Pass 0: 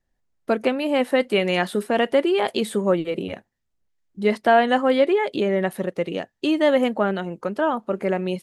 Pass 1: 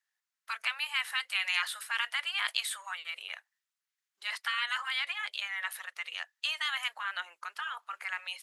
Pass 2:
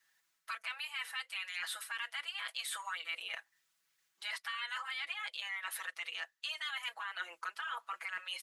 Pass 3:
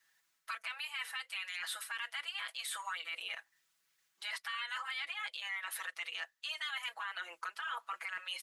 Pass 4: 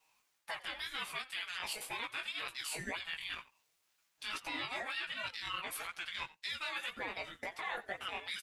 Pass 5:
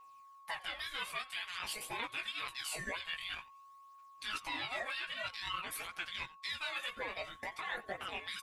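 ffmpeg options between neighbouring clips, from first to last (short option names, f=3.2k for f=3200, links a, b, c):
-af "afftfilt=real='re*lt(hypot(re,im),0.282)':imag='im*lt(hypot(re,im),0.282)':win_size=1024:overlap=0.75,highpass=f=1.2k:w=0.5412,highpass=f=1.2k:w=1.3066"
-filter_complex "[0:a]areverse,acompressor=threshold=-40dB:ratio=6,areverse,aecho=1:1:6.1:0.99,acrossover=split=410[a][b];[b]acompressor=threshold=-53dB:ratio=2[c];[a][c]amix=inputs=2:normalize=0,volume=8.5dB"
-af "alimiter=level_in=6.5dB:limit=-24dB:level=0:latency=1:release=64,volume=-6.5dB,volume=1dB"
-af "flanger=delay=15:depth=5.5:speed=2,aecho=1:1:89:0.106,aeval=exprs='val(0)*sin(2*PI*660*n/s+660*0.3/1.1*sin(2*PI*1.1*n/s))':c=same,volume=6dB"
-af "aphaser=in_gain=1:out_gain=1:delay=2:decay=0.44:speed=0.5:type=triangular,aeval=exprs='val(0)+0.002*sin(2*PI*1100*n/s)':c=same,volume=-1dB"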